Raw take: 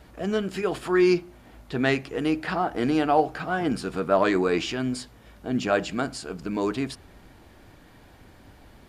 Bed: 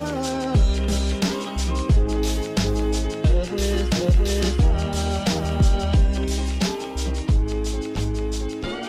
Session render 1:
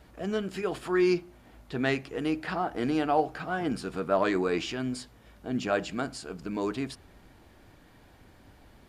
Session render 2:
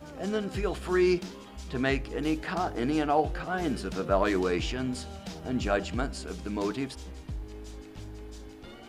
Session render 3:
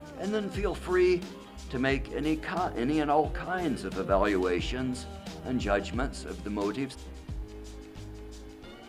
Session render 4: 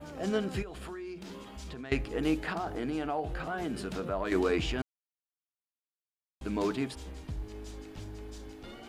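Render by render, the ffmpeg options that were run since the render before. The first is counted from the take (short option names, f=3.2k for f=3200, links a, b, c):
-af "volume=-4.5dB"
-filter_complex "[1:a]volume=-18.5dB[a];[0:a][a]amix=inputs=2:normalize=0"
-af "bandreject=f=60:t=h:w=6,bandreject=f=120:t=h:w=6,bandreject=f=180:t=h:w=6,adynamicequalizer=threshold=0.00126:dfrequency=5600:dqfactor=1.9:tfrequency=5600:tqfactor=1.9:attack=5:release=100:ratio=0.375:range=2.5:mode=cutabove:tftype=bell"
-filter_complex "[0:a]asettb=1/sr,asplit=3[a][b][c];[a]atrim=end=0.624[d];[b]atrim=start=0.62:end=1.92,asetpts=PTS-STARTPTS,afade=t=in:d=0.004:c=qsin,afade=t=out:st=1.296:d=0.004:c=qsin,acompressor=threshold=-38dB:ratio=16:attack=3.2:release=140:knee=1:detection=peak[e];[c]atrim=start=1.916[f];[d][e]acrossfade=d=0.004:c1=hsin:c2=qsin[g];[g][f]acrossfade=d=0.004:c1=qsin:c2=hsin,asettb=1/sr,asplit=3[h][i][j];[h]atrim=end=2.524[k];[i]atrim=start=2.52:end=4.32,asetpts=PTS-STARTPTS,afade=t=in:d=0.004:c=qsin,afade=t=out:st=1.796:d=0.004:c=qsin,acompressor=threshold=-32dB:ratio=2.5:attack=3.2:release=140:knee=1:detection=peak[l];[j]atrim=start=4.316[m];[k][l]acrossfade=d=0.004:c1=hsin:c2=qsin[n];[n][m]acrossfade=d=0.004:c1=qsin:c2=hsin,asplit=3[o][p][q];[o]atrim=end=4.82,asetpts=PTS-STARTPTS,afade=t=out:st=4.816:d=0.004:c=hsin[r];[p]atrim=start=4.82:end=6.41,asetpts=PTS-STARTPTS,volume=0[s];[q]atrim=start=6.41,asetpts=PTS-STARTPTS,afade=t=in:d=0.004:c=hsin[t];[r][s][t]concat=n=3:v=0:a=1"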